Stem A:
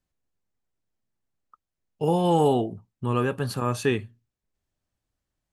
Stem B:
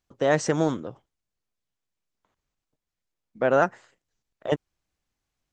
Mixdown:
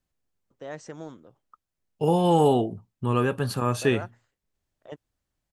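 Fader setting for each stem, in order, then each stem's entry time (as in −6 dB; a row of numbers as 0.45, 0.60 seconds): +1.0, −16.5 decibels; 0.00, 0.40 seconds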